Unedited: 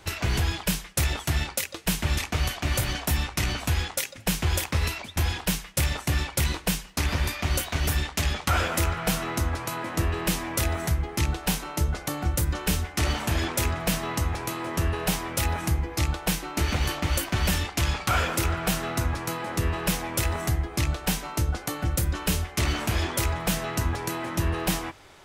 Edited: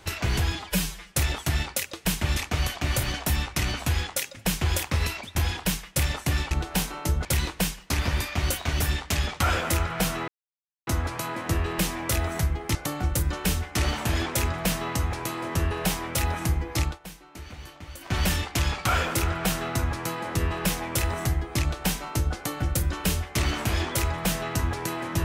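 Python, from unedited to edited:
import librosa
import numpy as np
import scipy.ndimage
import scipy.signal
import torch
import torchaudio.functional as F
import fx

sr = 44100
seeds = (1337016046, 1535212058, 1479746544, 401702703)

y = fx.edit(x, sr, fx.stretch_span(start_s=0.55, length_s=0.38, factor=1.5),
    fx.insert_silence(at_s=9.35, length_s=0.59),
    fx.move(start_s=11.23, length_s=0.74, to_s=6.32),
    fx.fade_down_up(start_s=16.06, length_s=1.31, db=-16.0, fade_s=0.15), tone=tone)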